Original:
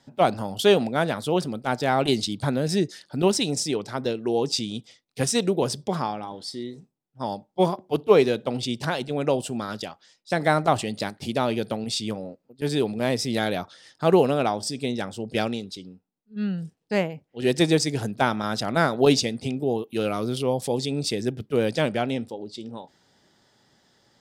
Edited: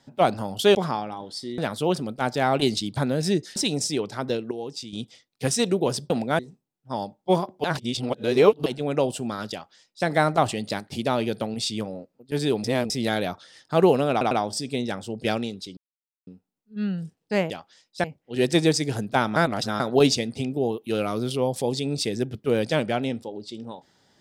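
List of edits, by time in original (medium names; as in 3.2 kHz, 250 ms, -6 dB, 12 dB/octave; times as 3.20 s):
0.75–1.04 s: swap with 5.86–6.69 s
3.02–3.32 s: delete
4.27–4.69 s: gain -10 dB
7.94–8.96 s: reverse
9.82–10.36 s: copy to 17.10 s
12.94–13.20 s: reverse
14.41 s: stutter 0.10 s, 3 plays
15.87 s: insert silence 0.50 s
18.42–18.86 s: reverse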